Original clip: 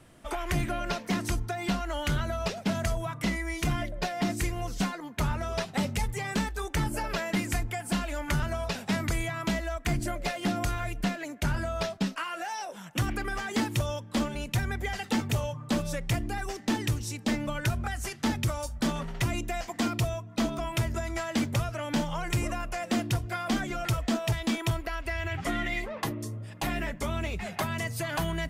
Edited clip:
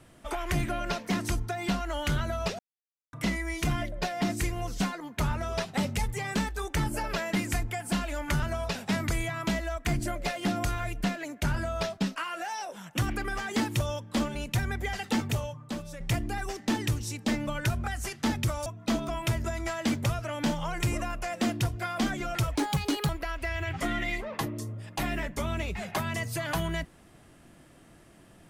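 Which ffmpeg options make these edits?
-filter_complex "[0:a]asplit=7[a][b][c][d][e][f][g];[a]atrim=end=2.59,asetpts=PTS-STARTPTS,afade=t=out:st=2.586:d=0.004:c=hsin[h];[b]atrim=start=2.59:end=3.13,asetpts=PTS-STARTPTS,volume=0[i];[c]atrim=start=3.13:end=16,asetpts=PTS-STARTPTS,afade=t=in:d=0.004:c=hsin,afade=t=out:st=12.13:d=0.74:c=qua:silence=0.334965[j];[d]atrim=start=16:end=18.662,asetpts=PTS-STARTPTS,afade=t=in:d=0.004:c=hsin:silence=0.334965[k];[e]atrim=start=20.158:end=24.054[l];[f]atrim=start=24.05:end=24.73,asetpts=PTS-STARTPTS,asetrate=55566,aresample=44100[m];[g]atrim=start=24.726[n];[h][i][j][k]concat=n=4:v=0:a=1[o];[o][l]acrossfade=d=0.004:c1=hsin:c2=hsin[p];[p][m]acrossfade=d=0.004:c1=hsin:c2=hsin[q];[q][n]acrossfade=d=0.004:c1=hsin:c2=hsin"

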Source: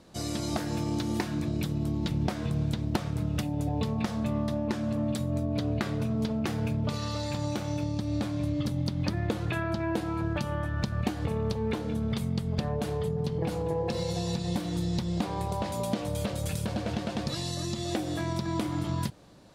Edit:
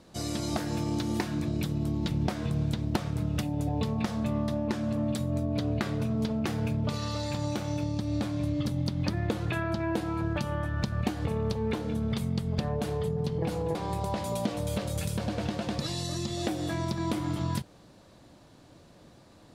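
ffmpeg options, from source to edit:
-filter_complex "[0:a]asplit=2[a][b];[a]atrim=end=13.752[c];[b]atrim=start=15.228[d];[c][d]acrossfade=d=0.004:c1=hsin:c2=hsin"

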